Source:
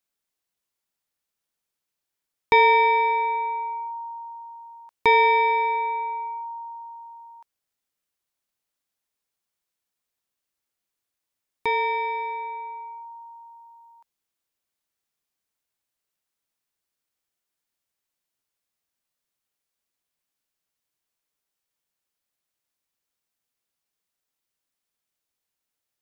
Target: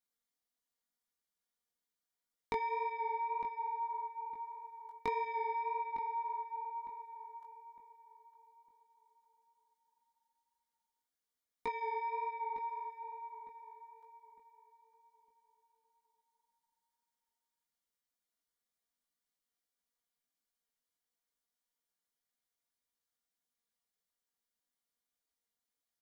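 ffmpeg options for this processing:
ffmpeg -i in.wav -filter_complex "[0:a]bandreject=frequency=2600:width=5.6,aecho=1:1:4.2:0.88,acompressor=threshold=-26dB:ratio=6,flanger=delay=16.5:depth=4.9:speed=1.7,asplit=2[link_01][link_02];[link_02]adelay=907,lowpass=frequency=2400:poles=1,volume=-11.5dB,asplit=2[link_03][link_04];[link_04]adelay=907,lowpass=frequency=2400:poles=1,volume=0.34,asplit=2[link_05][link_06];[link_06]adelay=907,lowpass=frequency=2400:poles=1,volume=0.34,asplit=2[link_07][link_08];[link_08]adelay=907,lowpass=frequency=2400:poles=1,volume=0.34[link_09];[link_01][link_03][link_05][link_07][link_09]amix=inputs=5:normalize=0,volume=-6.5dB" out.wav

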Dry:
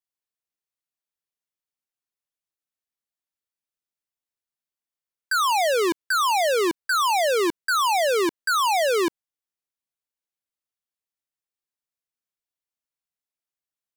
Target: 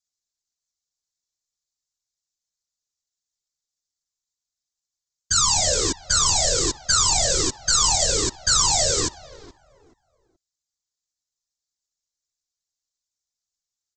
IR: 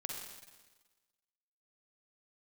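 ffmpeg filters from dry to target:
-filter_complex "[0:a]asplit=2[link_01][link_02];[link_02]adelay=426,lowpass=frequency=950:poles=1,volume=-17dB,asplit=2[link_03][link_04];[link_04]adelay=426,lowpass=frequency=950:poles=1,volume=0.29,asplit=2[link_05][link_06];[link_06]adelay=426,lowpass=frequency=950:poles=1,volume=0.29[link_07];[link_01][link_03][link_05][link_07]amix=inputs=4:normalize=0,aresample=16000,aeval=exprs='max(val(0),0)':channel_layout=same,aresample=44100,afftfilt=real='hypot(re,im)*cos(2*PI*random(0))':imag='hypot(re,im)*sin(2*PI*random(1))':win_size=512:overlap=0.75,aexciter=amount=10.6:drive=2.2:freq=3900,volume=5.5dB"

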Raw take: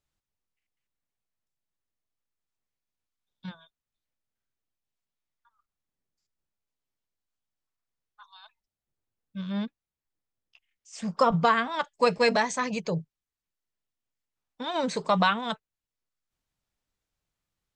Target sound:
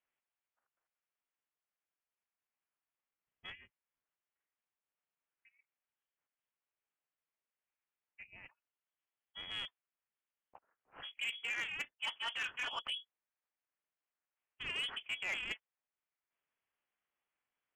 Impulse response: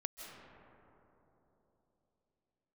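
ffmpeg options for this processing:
-af "highpass=frequency=1300:poles=1,areverse,acompressor=threshold=-35dB:ratio=20,areverse,tremolo=f=290:d=0.667,lowpass=frequency=3000:width_type=q:width=0.5098,lowpass=frequency=3000:width_type=q:width=0.6013,lowpass=frequency=3000:width_type=q:width=0.9,lowpass=frequency=3000:width_type=q:width=2.563,afreqshift=-3500,asoftclip=type=tanh:threshold=-36dB,volume=5.5dB"

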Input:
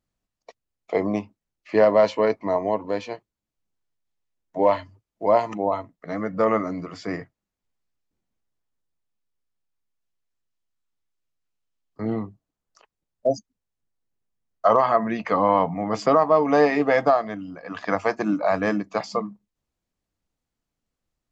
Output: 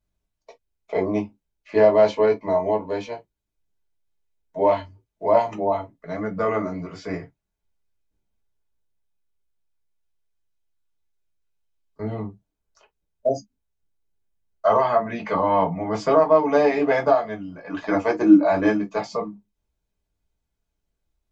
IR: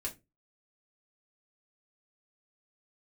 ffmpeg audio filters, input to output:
-filter_complex "[0:a]asettb=1/sr,asplit=3[link_01][link_02][link_03];[link_01]atrim=end=17.694[link_04];[link_02]atrim=start=17.69:end=18.66,asetpts=PTS-STARTPTS,afade=type=in:duration=0.004:curve=qsin,afade=type=out:start_time=0.966:duration=0.004:curve=qsin,equalizer=frequency=320:width=4.8:gain=14[link_05];[link_03]atrim=start=18.656[link_06];[link_04][link_05]acrossfade=duration=0.004:curve1=hsin:curve2=qsin[link_07];[link_07][link_06]acrossfade=duration=0.004:curve1=qsin:curve2=hsin[link_08];[1:a]atrim=start_sample=2205,atrim=end_sample=4410,asetrate=61740,aresample=44100[link_09];[link_08][link_09]afir=irnorm=-1:irlink=0,volume=2.5dB"

